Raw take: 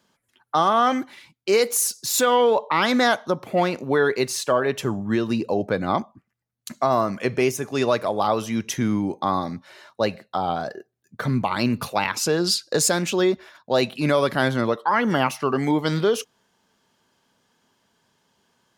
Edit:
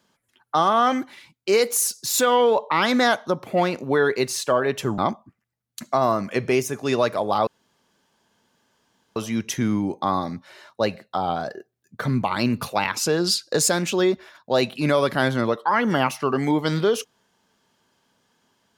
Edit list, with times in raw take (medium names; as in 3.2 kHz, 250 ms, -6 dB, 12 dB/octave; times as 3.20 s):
4.98–5.87 s: delete
8.36 s: insert room tone 1.69 s